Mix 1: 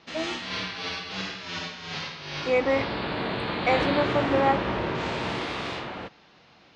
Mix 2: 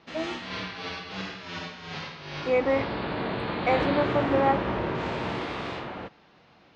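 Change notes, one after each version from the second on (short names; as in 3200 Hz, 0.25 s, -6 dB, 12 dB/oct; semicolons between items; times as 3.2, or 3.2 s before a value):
master: add high shelf 2800 Hz -8.5 dB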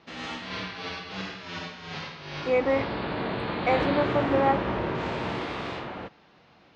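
first voice: muted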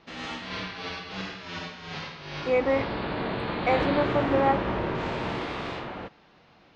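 background: remove HPF 53 Hz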